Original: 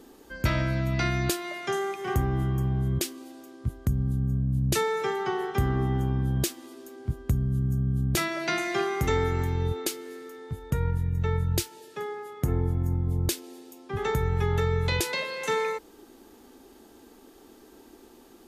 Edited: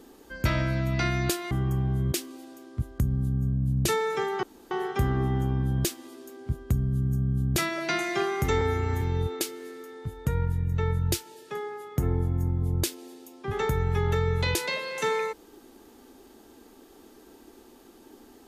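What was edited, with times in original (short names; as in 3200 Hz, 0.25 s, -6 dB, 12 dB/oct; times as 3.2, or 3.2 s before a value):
1.51–2.38 cut
5.3 insert room tone 0.28 s
9.2–9.47 stretch 1.5×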